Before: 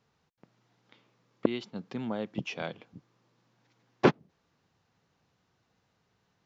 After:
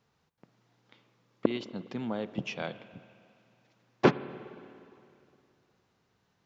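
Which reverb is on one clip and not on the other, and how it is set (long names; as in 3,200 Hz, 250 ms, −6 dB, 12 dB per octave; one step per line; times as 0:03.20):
spring reverb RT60 2.6 s, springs 51/58 ms, chirp 30 ms, DRR 14.5 dB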